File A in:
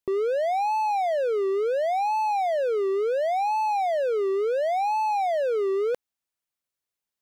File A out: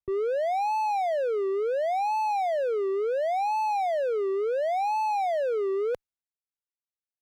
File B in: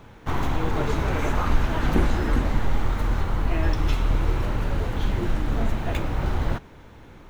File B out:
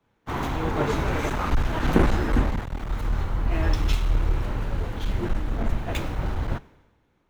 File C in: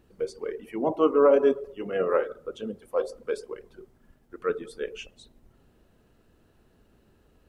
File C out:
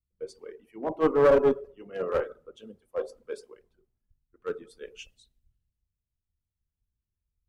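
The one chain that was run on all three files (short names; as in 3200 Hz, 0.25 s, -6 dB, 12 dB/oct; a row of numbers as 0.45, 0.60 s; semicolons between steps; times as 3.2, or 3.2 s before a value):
one-sided clip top -19 dBFS; three-band expander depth 100%; match loudness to -27 LUFS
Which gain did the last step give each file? -2.0, +0.5, -7.0 dB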